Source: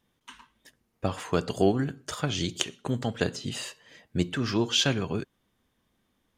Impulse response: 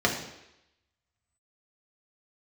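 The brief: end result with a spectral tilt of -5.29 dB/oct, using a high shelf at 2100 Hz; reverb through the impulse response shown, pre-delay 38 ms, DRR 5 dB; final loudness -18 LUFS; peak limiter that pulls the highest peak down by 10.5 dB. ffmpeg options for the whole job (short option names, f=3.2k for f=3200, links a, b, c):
-filter_complex "[0:a]highshelf=f=2.1k:g=-5.5,alimiter=limit=-18.5dB:level=0:latency=1,asplit=2[a][b];[1:a]atrim=start_sample=2205,adelay=38[c];[b][c]afir=irnorm=-1:irlink=0,volume=-19dB[d];[a][d]amix=inputs=2:normalize=0,volume=12.5dB"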